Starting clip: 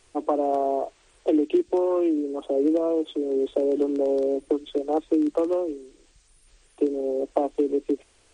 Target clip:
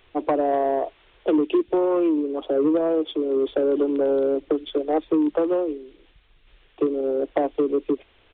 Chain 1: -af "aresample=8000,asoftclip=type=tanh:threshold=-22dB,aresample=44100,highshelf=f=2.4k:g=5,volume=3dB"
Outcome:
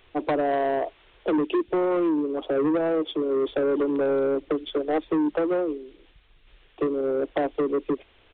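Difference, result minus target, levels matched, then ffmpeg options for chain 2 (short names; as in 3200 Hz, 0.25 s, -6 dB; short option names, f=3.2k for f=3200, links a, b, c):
soft clip: distortion +8 dB
-af "aresample=8000,asoftclip=type=tanh:threshold=-15.5dB,aresample=44100,highshelf=f=2.4k:g=5,volume=3dB"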